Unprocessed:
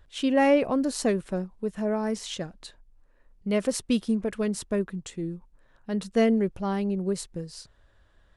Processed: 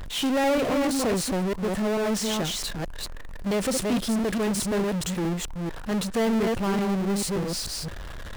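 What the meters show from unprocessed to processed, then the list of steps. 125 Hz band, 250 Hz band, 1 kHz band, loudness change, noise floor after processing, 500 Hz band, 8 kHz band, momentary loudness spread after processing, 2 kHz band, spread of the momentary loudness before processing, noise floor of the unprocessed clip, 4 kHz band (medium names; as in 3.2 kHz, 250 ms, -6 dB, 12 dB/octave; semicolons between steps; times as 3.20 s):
+4.5 dB, +1.0 dB, +2.5 dB, +1.0 dB, -36 dBFS, +0.5 dB, +7.5 dB, 10 LU, +3.5 dB, 15 LU, -61 dBFS, +7.5 dB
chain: chunks repeated in reverse 219 ms, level -5 dB; power-law waveshaper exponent 0.35; trim -8.5 dB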